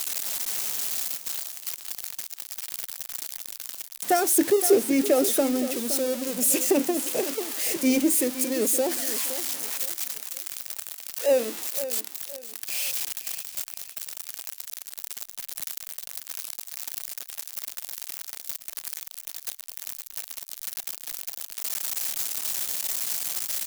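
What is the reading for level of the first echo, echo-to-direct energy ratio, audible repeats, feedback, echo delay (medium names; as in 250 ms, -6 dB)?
-12.5 dB, -12.0 dB, 3, 30%, 517 ms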